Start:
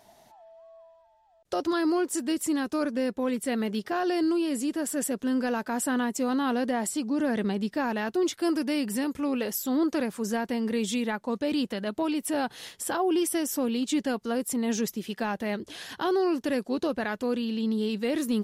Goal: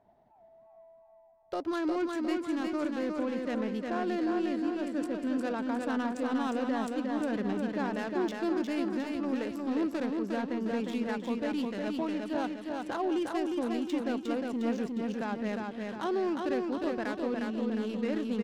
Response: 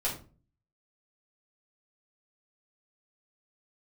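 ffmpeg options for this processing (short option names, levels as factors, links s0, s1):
-filter_complex "[0:a]asettb=1/sr,asplit=3[s0][s1][s2];[s0]atrim=end=1.844[s3];[s1]atrim=start=1.84:end=2.51,asetpts=PTS-STARTPTS,afade=t=in:d=0.004:c=qsin,afade=t=out:st=0.666:d=0.004:c=qsin,equalizer=f=2200:t=o:w=0.28:g=9.5[s4];[s2]atrim=start=2.506[s5];[s3][s4]acrossfade=d=0.004:c1=hsin:c2=qsin[s6];[s6][s5]acrossfade=d=0.004:c1=qsin:c2=hsin,adynamicsmooth=sensitivity=4.5:basefreq=1100,aecho=1:1:357|714|1071|1428|1785|2142|2499:0.668|0.341|0.174|0.0887|0.0452|0.0231|0.0118,volume=0.531"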